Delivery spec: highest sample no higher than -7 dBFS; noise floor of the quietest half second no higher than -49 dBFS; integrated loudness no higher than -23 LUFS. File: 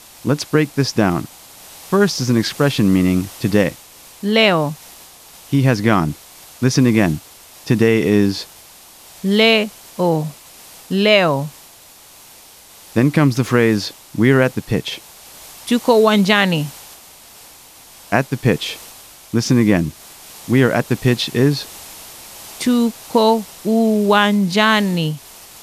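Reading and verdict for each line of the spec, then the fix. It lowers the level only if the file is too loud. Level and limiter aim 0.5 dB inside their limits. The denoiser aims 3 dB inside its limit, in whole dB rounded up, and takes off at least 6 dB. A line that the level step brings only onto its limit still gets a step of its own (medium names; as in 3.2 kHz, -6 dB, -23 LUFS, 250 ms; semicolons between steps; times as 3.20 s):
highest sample -1.5 dBFS: fail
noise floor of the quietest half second -44 dBFS: fail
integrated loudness -16.5 LUFS: fail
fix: trim -7 dB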